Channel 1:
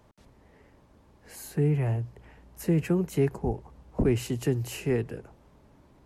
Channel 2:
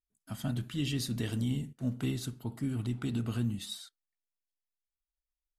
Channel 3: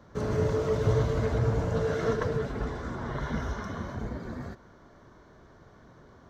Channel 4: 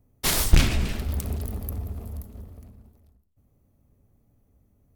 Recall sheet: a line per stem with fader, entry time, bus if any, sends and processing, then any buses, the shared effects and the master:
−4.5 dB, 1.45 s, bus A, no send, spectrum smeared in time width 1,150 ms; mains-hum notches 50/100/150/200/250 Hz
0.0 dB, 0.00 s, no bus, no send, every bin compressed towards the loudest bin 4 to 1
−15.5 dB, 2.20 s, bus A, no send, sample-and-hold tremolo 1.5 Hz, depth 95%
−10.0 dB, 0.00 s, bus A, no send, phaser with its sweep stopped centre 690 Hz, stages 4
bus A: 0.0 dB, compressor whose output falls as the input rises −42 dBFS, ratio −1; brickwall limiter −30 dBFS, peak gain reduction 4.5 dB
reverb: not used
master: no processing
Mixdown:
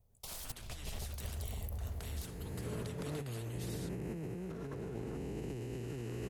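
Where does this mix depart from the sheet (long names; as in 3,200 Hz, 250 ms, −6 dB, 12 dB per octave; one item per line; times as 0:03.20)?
stem 2 0.0 dB → −8.5 dB
stem 3: entry 2.20 s → 2.50 s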